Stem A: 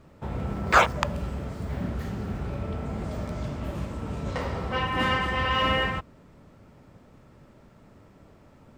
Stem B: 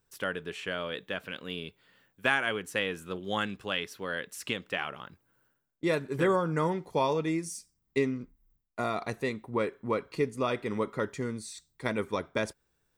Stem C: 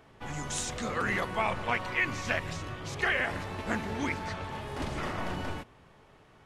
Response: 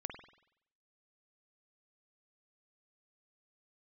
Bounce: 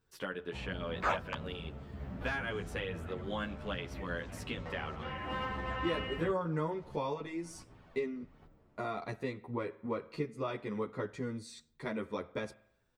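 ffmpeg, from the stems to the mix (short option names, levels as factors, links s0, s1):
-filter_complex "[0:a]adelay=300,volume=0.335[s0];[1:a]asoftclip=type=hard:threshold=0.178,volume=1.41,asplit=3[s1][s2][s3];[s2]volume=0.126[s4];[2:a]acompressor=threshold=0.0112:ratio=6,aphaser=in_gain=1:out_gain=1:delay=3:decay=0.5:speed=1.4:type=triangular,adelay=2000,volume=0.944[s5];[s3]apad=whole_len=373042[s6];[s5][s6]sidechaincompress=threshold=0.02:ratio=8:attack=8.8:release=411[s7];[s1][s7]amix=inputs=2:normalize=0,equalizer=f=4400:t=o:w=0.77:g=4,acompressor=threshold=0.0126:ratio=2,volume=1[s8];[3:a]atrim=start_sample=2205[s9];[s4][s9]afir=irnorm=-1:irlink=0[s10];[s0][s8][s10]amix=inputs=3:normalize=0,highshelf=f=3800:g=-11,asplit=2[s11][s12];[s12]adelay=10.9,afreqshift=-0.58[s13];[s11][s13]amix=inputs=2:normalize=1"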